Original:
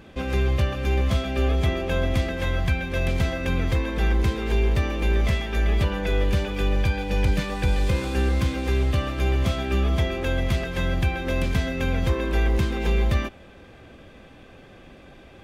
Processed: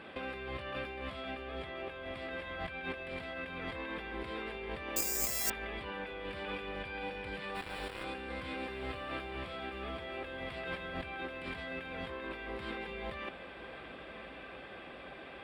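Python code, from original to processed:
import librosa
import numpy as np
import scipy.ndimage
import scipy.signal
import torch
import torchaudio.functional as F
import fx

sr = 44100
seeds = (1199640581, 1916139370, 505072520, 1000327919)

y = fx.highpass(x, sr, hz=860.0, slope=6)
y = fx.over_compress(y, sr, threshold_db=-40.0, ratio=-1.0)
y = fx.quant_dither(y, sr, seeds[0], bits=6, dither='none', at=(7.54, 8.03), fade=0.02)
y = scipy.signal.lfilter(np.full(7, 1.0 / 7), 1.0, y)
y = fx.echo_diffused(y, sr, ms=1161, feedback_pct=68, wet_db=-13.5)
y = fx.resample_bad(y, sr, factor=6, down='filtered', up='zero_stuff', at=(4.96, 5.5))
y = y * librosa.db_to_amplitude(-1.0)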